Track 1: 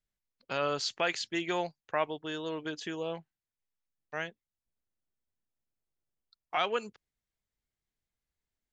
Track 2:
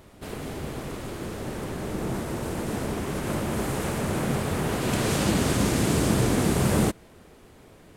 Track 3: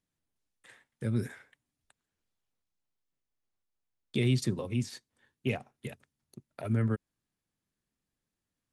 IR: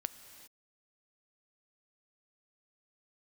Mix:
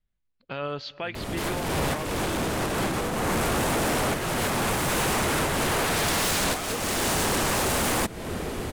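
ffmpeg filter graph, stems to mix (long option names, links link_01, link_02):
-filter_complex "[0:a]lowpass=frequency=4000:width=0.5412,lowpass=frequency=4000:width=1.3066,lowshelf=frequency=180:gain=12,volume=-0.5dB,asplit=2[link_01][link_02];[link_02]volume=-10dB[link_03];[1:a]acompressor=threshold=-33dB:ratio=3,aeval=exprs='0.0944*sin(PI/2*6.31*val(0)/0.0944)':channel_layout=same,adelay=1150,volume=0.5dB[link_04];[2:a]volume=-11dB[link_05];[3:a]atrim=start_sample=2205[link_06];[link_03][link_06]afir=irnorm=-1:irlink=0[link_07];[link_01][link_04][link_05][link_07]amix=inputs=4:normalize=0,alimiter=limit=-21.5dB:level=0:latency=1:release=252"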